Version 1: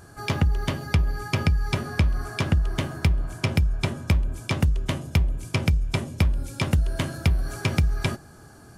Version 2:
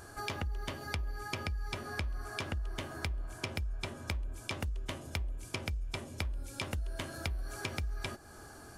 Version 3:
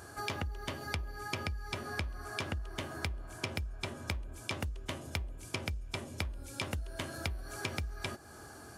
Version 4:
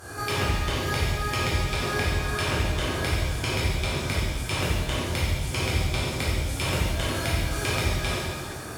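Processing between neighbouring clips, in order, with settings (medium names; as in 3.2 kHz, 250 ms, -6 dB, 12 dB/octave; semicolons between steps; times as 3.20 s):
peaking EQ 150 Hz -11.5 dB 1.2 oct; compression 3:1, threshold -38 dBFS, peak gain reduction 13.5 dB
high-pass 61 Hz; trim +1 dB
one-sided clip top -25 dBFS; pitch-shifted reverb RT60 1.4 s, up +7 st, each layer -8 dB, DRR -9 dB; trim +3 dB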